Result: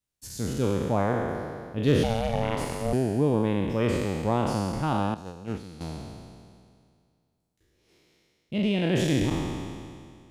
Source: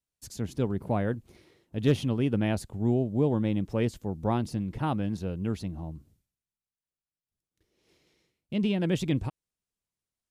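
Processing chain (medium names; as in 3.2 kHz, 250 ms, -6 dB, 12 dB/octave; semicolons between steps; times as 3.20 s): spectral sustain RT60 2.14 s; 2.03–2.93 s: ring modulator 340 Hz; 5.14–5.81 s: gate -26 dBFS, range -12 dB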